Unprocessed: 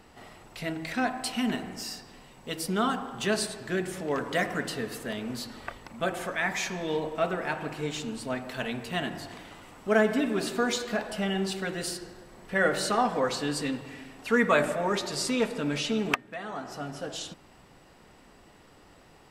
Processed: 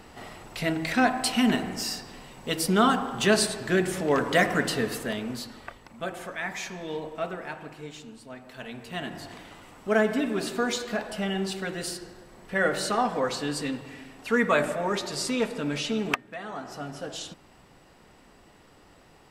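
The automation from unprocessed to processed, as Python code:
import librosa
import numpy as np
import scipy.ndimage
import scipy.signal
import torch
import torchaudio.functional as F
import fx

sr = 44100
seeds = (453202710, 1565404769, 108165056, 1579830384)

y = fx.gain(x, sr, db=fx.line((4.88, 6.0), (5.78, -4.0), (7.24, -4.0), (8.28, -11.0), (9.28, 0.0)))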